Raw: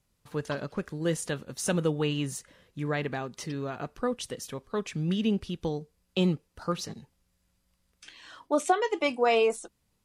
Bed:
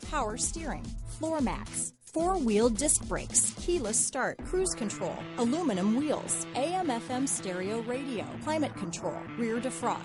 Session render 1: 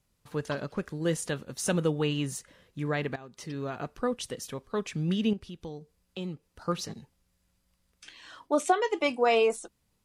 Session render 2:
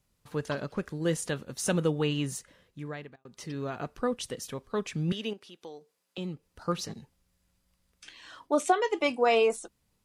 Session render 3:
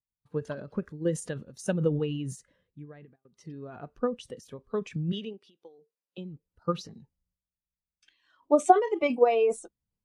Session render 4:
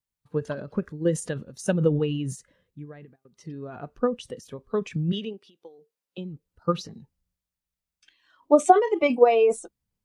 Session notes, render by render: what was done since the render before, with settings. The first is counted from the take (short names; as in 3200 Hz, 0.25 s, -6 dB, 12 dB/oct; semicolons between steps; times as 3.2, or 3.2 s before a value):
3.16–3.67 fade in, from -16.5 dB; 5.33–6.68 compressor 1.5:1, threshold -52 dBFS
2.35–3.25 fade out; 5.12–6.18 HPF 420 Hz
transient shaper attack +7 dB, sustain +11 dB; spectral expander 1.5:1
gain +4.5 dB; limiter -3 dBFS, peak gain reduction 2.5 dB